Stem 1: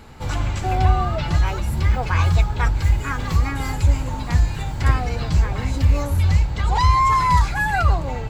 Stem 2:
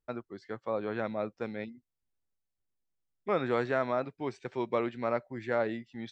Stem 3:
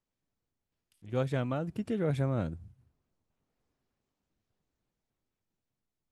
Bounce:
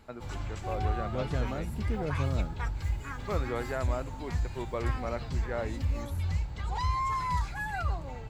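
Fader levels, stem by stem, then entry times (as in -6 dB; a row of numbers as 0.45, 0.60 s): -14.0, -5.0, -4.0 dB; 0.00, 0.00, 0.00 s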